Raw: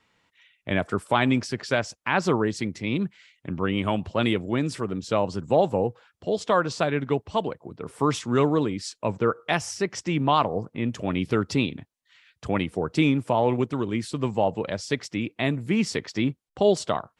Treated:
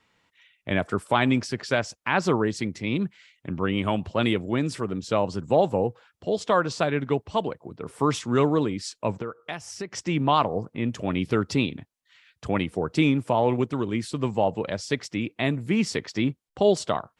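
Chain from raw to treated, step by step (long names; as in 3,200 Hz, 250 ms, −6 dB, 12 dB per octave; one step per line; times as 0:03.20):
0:09.13–0:09.92: downward compressor 4 to 1, threshold −32 dBFS, peak gain reduction 12.5 dB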